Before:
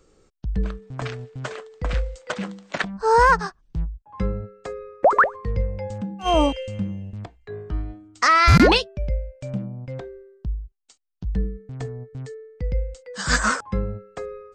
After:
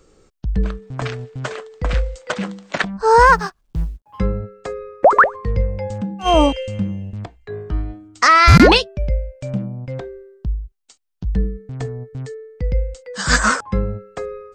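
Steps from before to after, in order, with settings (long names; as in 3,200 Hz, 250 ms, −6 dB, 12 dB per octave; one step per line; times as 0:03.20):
0:03.32–0:04.19: mu-law and A-law mismatch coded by A
level +5 dB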